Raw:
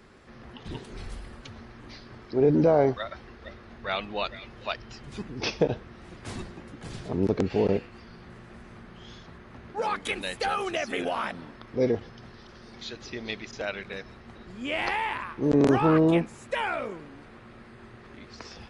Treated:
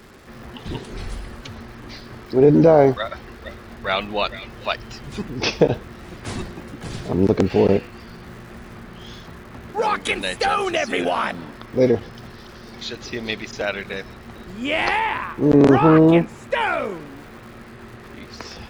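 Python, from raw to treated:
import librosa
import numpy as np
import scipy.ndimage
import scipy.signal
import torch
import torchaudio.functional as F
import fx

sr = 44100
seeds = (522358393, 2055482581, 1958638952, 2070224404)

y = fx.high_shelf(x, sr, hz=6500.0, db=-11.5, at=(14.99, 16.61))
y = fx.dmg_crackle(y, sr, seeds[0], per_s=300.0, level_db=-48.0)
y = y * 10.0 ** (8.0 / 20.0)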